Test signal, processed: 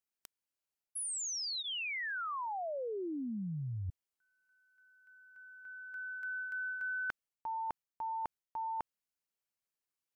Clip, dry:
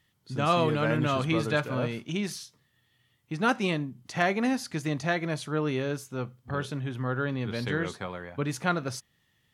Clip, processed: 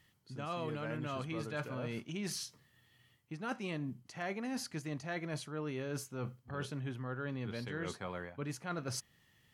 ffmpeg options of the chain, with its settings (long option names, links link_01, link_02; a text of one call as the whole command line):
ffmpeg -i in.wav -af "bandreject=frequency=3600:width=12,areverse,acompressor=threshold=-39dB:ratio=6,areverse,volume=1.5dB" out.wav